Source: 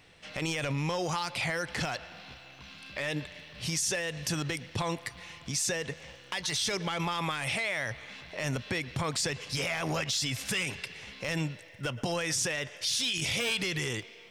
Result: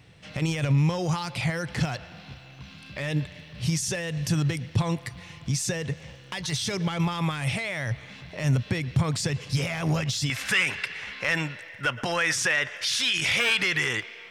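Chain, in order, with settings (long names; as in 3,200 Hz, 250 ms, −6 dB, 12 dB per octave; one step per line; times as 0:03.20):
parametric band 120 Hz +13 dB 1.8 octaves, from 0:10.30 1,600 Hz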